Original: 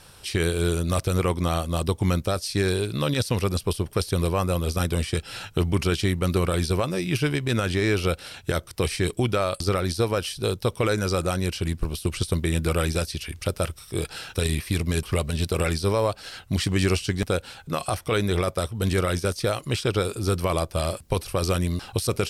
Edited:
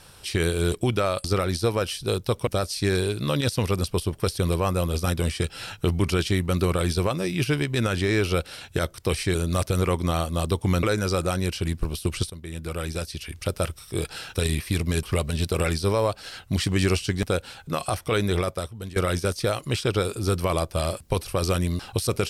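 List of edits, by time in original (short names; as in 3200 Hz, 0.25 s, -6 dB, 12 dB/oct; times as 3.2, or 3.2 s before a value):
0.72–2.2 swap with 9.08–10.83
12.3–13.61 fade in, from -17.5 dB
18.35–18.96 fade out, to -18.5 dB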